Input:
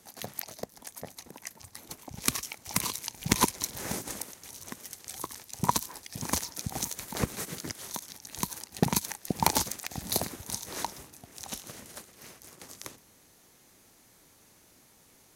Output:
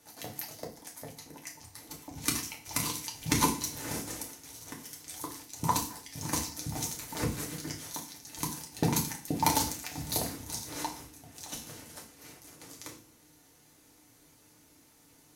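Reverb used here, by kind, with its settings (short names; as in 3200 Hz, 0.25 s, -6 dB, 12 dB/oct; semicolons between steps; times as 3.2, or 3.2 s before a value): FDN reverb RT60 0.39 s, low-frequency decay 1.5×, high-frequency decay 1×, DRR -1.5 dB; gain -5.5 dB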